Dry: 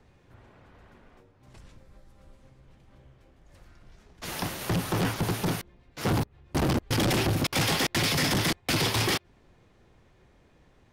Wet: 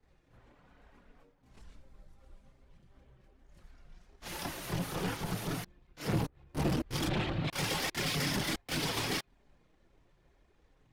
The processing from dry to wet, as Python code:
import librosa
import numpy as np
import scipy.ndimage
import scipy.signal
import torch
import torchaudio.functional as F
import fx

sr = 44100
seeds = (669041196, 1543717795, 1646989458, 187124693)

y = fx.steep_lowpass(x, sr, hz=4100.0, slope=48, at=(7.06, 7.5))
y = fx.leveller(y, sr, passes=1)
y = fx.chorus_voices(y, sr, voices=6, hz=0.65, base_ms=29, depth_ms=3.8, mix_pct=70)
y = y * librosa.db_to_amplitude(-7.0)